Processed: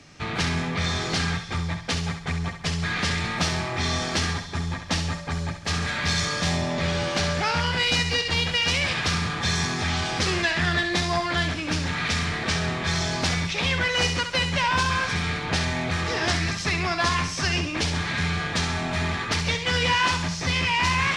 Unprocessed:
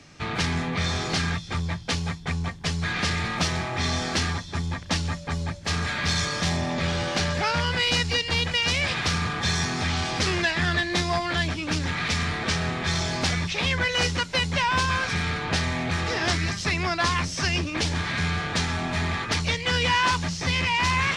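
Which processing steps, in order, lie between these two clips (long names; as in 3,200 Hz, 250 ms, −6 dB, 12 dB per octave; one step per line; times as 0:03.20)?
feedback echo with a high-pass in the loop 67 ms, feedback 44%, level −7.5 dB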